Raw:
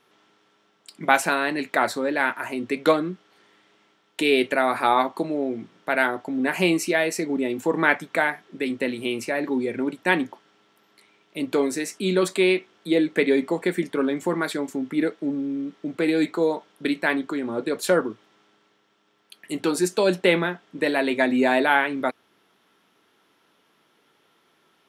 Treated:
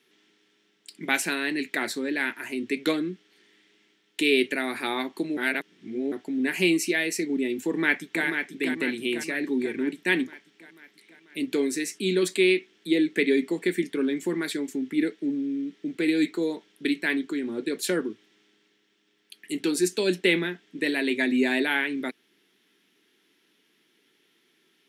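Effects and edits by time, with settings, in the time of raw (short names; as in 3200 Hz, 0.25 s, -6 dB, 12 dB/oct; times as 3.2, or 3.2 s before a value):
5.37–6.12 reverse
7.65–8.25 echo throw 0.49 s, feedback 60%, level -6 dB
whole clip: HPF 210 Hz 12 dB/oct; band shelf 840 Hz -13.5 dB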